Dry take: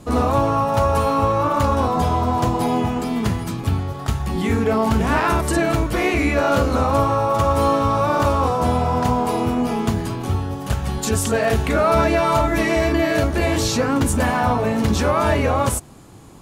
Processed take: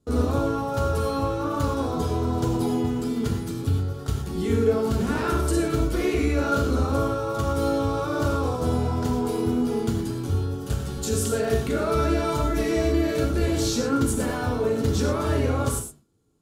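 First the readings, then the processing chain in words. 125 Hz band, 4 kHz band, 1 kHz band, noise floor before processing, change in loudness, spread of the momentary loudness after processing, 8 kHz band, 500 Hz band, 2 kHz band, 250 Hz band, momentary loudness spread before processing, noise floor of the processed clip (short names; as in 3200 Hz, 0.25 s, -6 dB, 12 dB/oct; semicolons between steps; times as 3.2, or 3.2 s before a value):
-4.0 dB, -5.5 dB, -11.0 dB, -30 dBFS, -5.5 dB, 4 LU, -4.5 dB, -5.0 dB, -9.5 dB, -3.5 dB, 6 LU, -33 dBFS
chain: gate with hold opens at -26 dBFS; band shelf 1100 Hz -8 dB 2.9 oct; small resonant body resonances 450/1400 Hz, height 12 dB, ringing for 40 ms; flange 0.16 Hz, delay 4.5 ms, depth 2.9 ms, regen -79%; non-linear reverb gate 0.14 s flat, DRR 3 dB; gain -1.5 dB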